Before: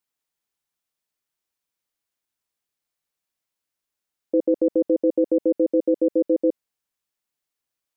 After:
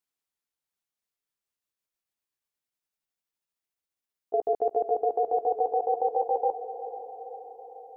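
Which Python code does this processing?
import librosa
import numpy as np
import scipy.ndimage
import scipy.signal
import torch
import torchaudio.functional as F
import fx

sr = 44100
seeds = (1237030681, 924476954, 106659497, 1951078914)

y = fx.pitch_glide(x, sr, semitones=9.5, runs='starting unshifted')
y = fx.echo_diffused(y, sr, ms=504, feedback_pct=59, wet_db=-12)
y = y * 10.0 ** (-4.5 / 20.0)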